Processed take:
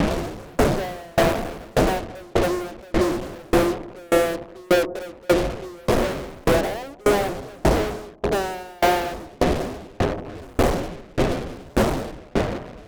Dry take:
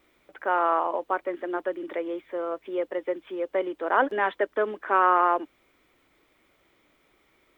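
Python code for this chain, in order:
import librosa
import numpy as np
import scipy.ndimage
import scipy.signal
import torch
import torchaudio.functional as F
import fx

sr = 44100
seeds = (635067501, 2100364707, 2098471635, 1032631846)

p1 = fx.dmg_wind(x, sr, seeds[0], corner_hz=620.0, level_db=-30.0)
p2 = fx.curve_eq(p1, sr, hz=(120.0, 270.0, 750.0, 1100.0), db=(0, 6, 10, -24))
p3 = fx.rider(p2, sr, range_db=4, speed_s=2.0)
p4 = p2 + (p3 * librosa.db_to_amplitude(0.0))
p5 = fx.stretch_vocoder(p4, sr, factor=1.7)
p6 = fx.tilt_eq(p5, sr, slope=-3.5)
p7 = fx.fuzz(p6, sr, gain_db=33.0, gate_db=-26.0)
p8 = p7 + fx.echo_bbd(p7, sr, ms=178, stages=1024, feedback_pct=80, wet_db=-9.5, dry=0)
y = fx.tremolo_decay(p8, sr, direction='decaying', hz=1.7, depth_db=33)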